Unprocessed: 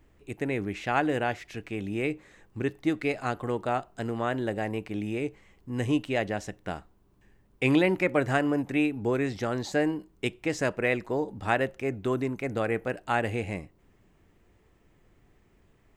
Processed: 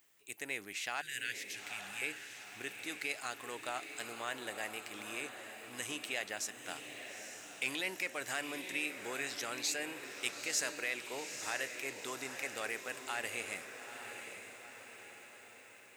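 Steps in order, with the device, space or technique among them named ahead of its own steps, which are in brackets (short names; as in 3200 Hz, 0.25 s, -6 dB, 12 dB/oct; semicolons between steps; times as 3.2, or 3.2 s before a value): 1.01–2.02 Chebyshev band-stop 200–1600 Hz, order 4; soft clipper into limiter (soft clip -11 dBFS, distortion -27 dB; limiter -19.5 dBFS, peak gain reduction 7 dB); differentiator; diffused feedback echo 0.885 s, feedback 54%, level -7.5 dB; gain +8 dB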